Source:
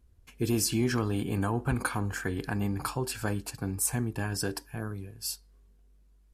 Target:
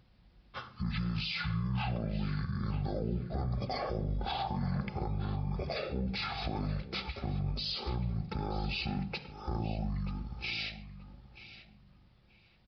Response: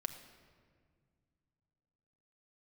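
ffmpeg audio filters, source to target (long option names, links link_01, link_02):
-filter_complex "[0:a]highpass=frequency=110:width=0.5412,highpass=frequency=110:width=1.3066,acompressor=threshold=-43dB:ratio=2,alimiter=level_in=12dB:limit=-24dB:level=0:latency=1:release=22,volume=-12dB,asetrate=22050,aresample=44100,asplit=2[link_01][link_02];[link_02]adelay=931,lowpass=frequency=3900:poles=1,volume=-13.5dB,asplit=2[link_03][link_04];[link_04]adelay=931,lowpass=frequency=3900:poles=1,volume=0.22,asplit=2[link_05][link_06];[link_06]adelay=931,lowpass=frequency=3900:poles=1,volume=0.22[link_07];[link_01][link_03][link_05][link_07]amix=inputs=4:normalize=0,asplit=2[link_08][link_09];[1:a]atrim=start_sample=2205,afade=type=out:start_time=0.2:duration=0.01,atrim=end_sample=9261,lowpass=7200[link_10];[link_09][link_10]afir=irnorm=-1:irlink=0,volume=2.5dB[link_11];[link_08][link_11]amix=inputs=2:normalize=0,aresample=11025,aresample=44100,volume=4dB"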